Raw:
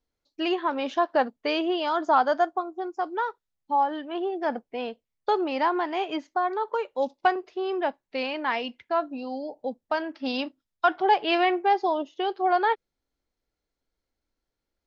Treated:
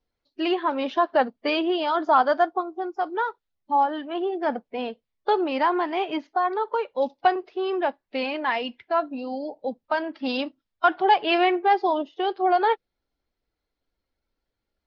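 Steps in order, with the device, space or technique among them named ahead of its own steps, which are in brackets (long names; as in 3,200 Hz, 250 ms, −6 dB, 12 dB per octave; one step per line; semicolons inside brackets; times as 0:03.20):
clip after many re-uploads (low-pass filter 5,000 Hz 24 dB per octave; spectral magnitudes quantised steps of 15 dB)
level +2.5 dB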